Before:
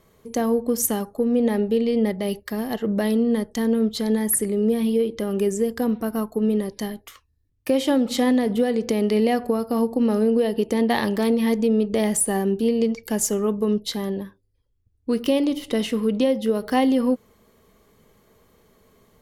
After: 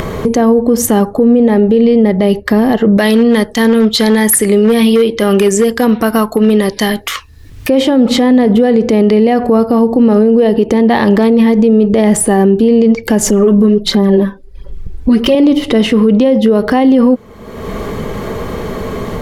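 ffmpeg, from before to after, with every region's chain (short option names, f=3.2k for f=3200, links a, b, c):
-filter_complex "[0:a]asettb=1/sr,asplit=3[a][b][c];[a]atrim=end=2.974[d];[b]atrim=start=2.97:end=7.69,asetpts=PTS-STARTPTS,afade=t=in:d=0.004:c=qsin,afade=t=out:st=4.716:d=0.004:c=qsin,asoftclip=type=hard:threshold=-14.5dB,tiltshelf=f=1.1k:g=-8[e];[c]atrim=start=7.686[f];[d][e]acrossfade=d=0.004:c1=hsin:c2=qsin[g];[g][f]acrossfade=d=0.004:c1=qsin:c2=hsin,asettb=1/sr,asplit=3[h][i][j];[h]atrim=end=13.264[k];[i]atrim=start=13.26:end=15.35,asetpts=PTS-STARTPTS,afade=t=in:d=0.004:c=qsin,afade=t=out:st=2.086:d=0.004:c=qsin,aecho=1:1:5.2:0.81,atrim=end_sample=92169,aphaser=in_gain=1:out_gain=1:delay=4:decay=0.49:speed=1.4:type=sinusoidal[l];[j]atrim=start=15.346[m];[k][l]acrossfade=d=0.004:c1=hsin:c2=qsin[n];[n][m]acrossfade=d=0.004:c1=qsin:c2=hsin,lowpass=f=1.9k:p=1,acompressor=mode=upward:threshold=-21dB:ratio=2.5,alimiter=level_in=19.5dB:limit=-1dB:release=50:level=0:latency=1,volume=-1dB"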